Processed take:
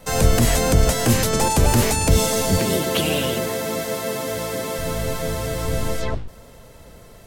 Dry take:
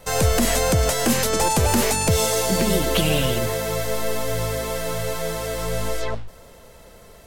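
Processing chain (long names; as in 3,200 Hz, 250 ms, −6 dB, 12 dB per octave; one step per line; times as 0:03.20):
sub-octave generator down 1 octave, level +3 dB
0:02.59–0:04.79: high-pass filter 190 Hz 12 dB per octave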